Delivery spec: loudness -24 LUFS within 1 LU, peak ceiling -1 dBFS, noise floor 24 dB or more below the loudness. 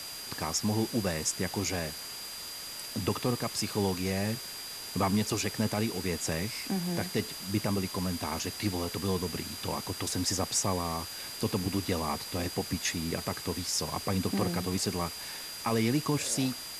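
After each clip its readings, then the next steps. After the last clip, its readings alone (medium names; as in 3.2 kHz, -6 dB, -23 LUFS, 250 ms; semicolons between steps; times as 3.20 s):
steady tone 4.8 kHz; tone level -42 dBFS; noise floor -41 dBFS; noise floor target -56 dBFS; loudness -31.5 LUFS; peak level -16.0 dBFS; loudness target -24.0 LUFS
-> band-stop 4.8 kHz, Q 30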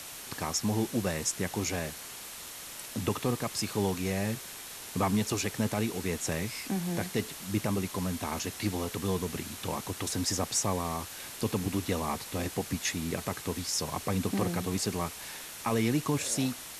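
steady tone not found; noise floor -44 dBFS; noise floor target -56 dBFS
-> noise reduction 12 dB, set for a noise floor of -44 dBFS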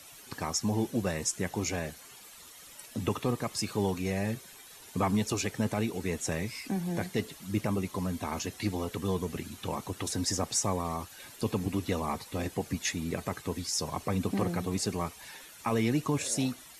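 noise floor -51 dBFS; noise floor target -57 dBFS
-> noise reduction 6 dB, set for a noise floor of -51 dBFS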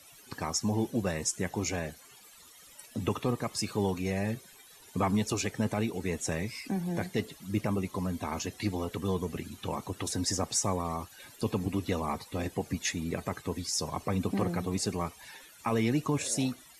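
noise floor -55 dBFS; noise floor target -57 dBFS
-> noise reduction 6 dB, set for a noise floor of -55 dBFS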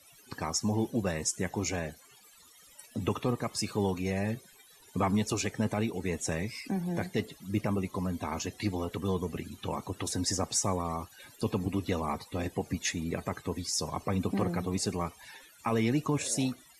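noise floor -58 dBFS; loudness -32.5 LUFS; peak level -17.0 dBFS; loudness target -24.0 LUFS
-> trim +8.5 dB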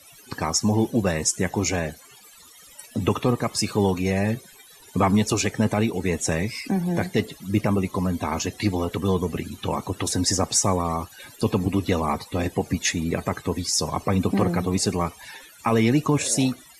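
loudness -24.0 LUFS; peak level -8.5 dBFS; noise floor -49 dBFS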